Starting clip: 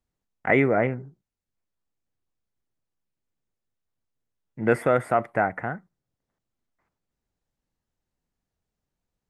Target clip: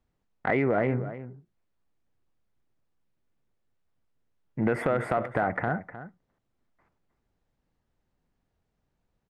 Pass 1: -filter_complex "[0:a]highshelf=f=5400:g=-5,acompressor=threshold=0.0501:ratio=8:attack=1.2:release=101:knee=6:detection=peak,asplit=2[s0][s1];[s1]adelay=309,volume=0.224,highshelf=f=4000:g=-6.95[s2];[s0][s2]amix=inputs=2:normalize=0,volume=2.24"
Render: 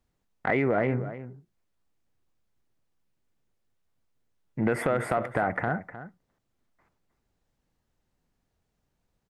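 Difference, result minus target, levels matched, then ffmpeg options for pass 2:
8 kHz band +8.5 dB
-filter_complex "[0:a]highshelf=f=5400:g=-16.5,acompressor=threshold=0.0501:ratio=8:attack=1.2:release=101:knee=6:detection=peak,asplit=2[s0][s1];[s1]adelay=309,volume=0.224,highshelf=f=4000:g=-6.95[s2];[s0][s2]amix=inputs=2:normalize=0,volume=2.24"

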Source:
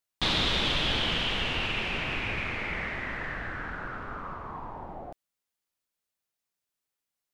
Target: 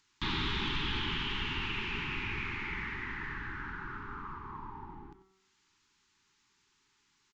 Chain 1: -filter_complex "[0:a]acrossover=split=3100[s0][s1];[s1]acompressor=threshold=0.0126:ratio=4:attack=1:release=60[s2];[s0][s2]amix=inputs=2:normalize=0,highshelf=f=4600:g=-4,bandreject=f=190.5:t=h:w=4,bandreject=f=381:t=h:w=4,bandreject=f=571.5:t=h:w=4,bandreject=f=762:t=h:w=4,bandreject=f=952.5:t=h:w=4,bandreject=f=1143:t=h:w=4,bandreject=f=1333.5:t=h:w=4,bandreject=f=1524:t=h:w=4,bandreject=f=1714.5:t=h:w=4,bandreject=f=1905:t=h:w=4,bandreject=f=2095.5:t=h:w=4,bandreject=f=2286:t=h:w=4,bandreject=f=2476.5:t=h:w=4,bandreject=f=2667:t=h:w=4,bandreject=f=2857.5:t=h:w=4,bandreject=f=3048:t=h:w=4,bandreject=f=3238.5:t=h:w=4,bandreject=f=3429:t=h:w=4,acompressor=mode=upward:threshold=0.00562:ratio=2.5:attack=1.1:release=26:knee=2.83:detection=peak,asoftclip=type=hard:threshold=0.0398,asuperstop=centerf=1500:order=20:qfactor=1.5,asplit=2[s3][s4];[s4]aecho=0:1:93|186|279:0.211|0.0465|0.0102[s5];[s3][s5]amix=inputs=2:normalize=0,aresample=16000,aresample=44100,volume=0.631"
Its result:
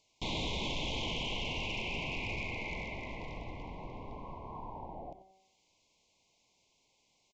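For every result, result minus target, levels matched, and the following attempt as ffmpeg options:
hard clipper: distortion +26 dB; 500 Hz band +7.5 dB
-filter_complex "[0:a]acrossover=split=3100[s0][s1];[s1]acompressor=threshold=0.0126:ratio=4:attack=1:release=60[s2];[s0][s2]amix=inputs=2:normalize=0,highshelf=f=4600:g=-4,bandreject=f=190.5:t=h:w=4,bandreject=f=381:t=h:w=4,bandreject=f=571.5:t=h:w=4,bandreject=f=762:t=h:w=4,bandreject=f=952.5:t=h:w=4,bandreject=f=1143:t=h:w=4,bandreject=f=1333.5:t=h:w=4,bandreject=f=1524:t=h:w=4,bandreject=f=1714.5:t=h:w=4,bandreject=f=1905:t=h:w=4,bandreject=f=2095.5:t=h:w=4,bandreject=f=2286:t=h:w=4,bandreject=f=2476.5:t=h:w=4,bandreject=f=2667:t=h:w=4,bandreject=f=2857.5:t=h:w=4,bandreject=f=3048:t=h:w=4,bandreject=f=3238.5:t=h:w=4,bandreject=f=3429:t=h:w=4,acompressor=mode=upward:threshold=0.00562:ratio=2.5:attack=1.1:release=26:knee=2.83:detection=peak,asoftclip=type=hard:threshold=0.106,asuperstop=centerf=1500:order=20:qfactor=1.5,asplit=2[s3][s4];[s4]aecho=0:1:93|186|279:0.211|0.0465|0.0102[s5];[s3][s5]amix=inputs=2:normalize=0,aresample=16000,aresample=44100,volume=0.631"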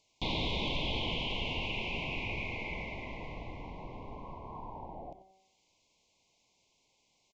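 500 Hz band +7.0 dB
-filter_complex "[0:a]acrossover=split=3100[s0][s1];[s1]acompressor=threshold=0.0126:ratio=4:attack=1:release=60[s2];[s0][s2]amix=inputs=2:normalize=0,highshelf=f=4600:g=-4,bandreject=f=190.5:t=h:w=4,bandreject=f=381:t=h:w=4,bandreject=f=571.5:t=h:w=4,bandreject=f=762:t=h:w=4,bandreject=f=952.5:t=h:w=4,bandreject=f=1143:t=h:w=4,bandreject=f=1333.5:t=h:w=4,bandreject=f=1524:t=h:w=4,bandreject=f=1714.5:t=h:w=4,bandreject=f=1905:t=h:w=4,bandreject=f=2095.5:t=h:w=4,bandreject=f=2286:t=h:w=4,bandreject=f=2476.5:t=h:w=4,bandreject=f=2667:t=h:w=4,bandreject=f=2857.5:t=h:w=4,bandreject=f=3048:t=h:w=4,bandreject=f=3238.5:t=h:w=4,bandreject=f=3429:t=h:w=4,acompressor=mode=upward:threshold=0.00562:ratio=2.5:attack=1.1:release=26:knee=2.83:detection=peak,asoftclip=type=hard:threshold=0.106,asuperstop=centerf=590:order=20:qfactor=1.5,asplit=2[s3][s4];[s4]aecho=0:1:93|186|279:0.211|0.0465|0.0102[s5];[s3][s5]amix=inputs=2:normalize=0,aresample=16000,aresample=44100,volume=0.631"

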